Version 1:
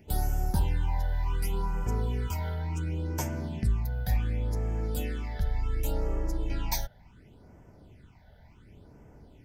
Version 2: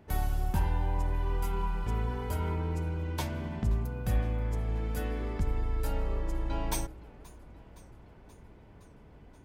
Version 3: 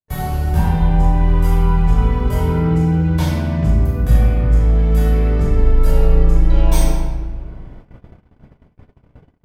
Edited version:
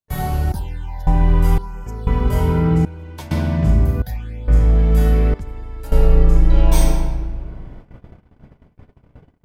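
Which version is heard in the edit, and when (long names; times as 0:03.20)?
3
0:00.52–0:01.07: punch in from 1
0:01.58–0:02.07: punch in from 1
0:02.85–0:03.31: punch in from 2
0:04.02–0:04.48: punch in from 1
0:05.34–0:05.92: punch in from 2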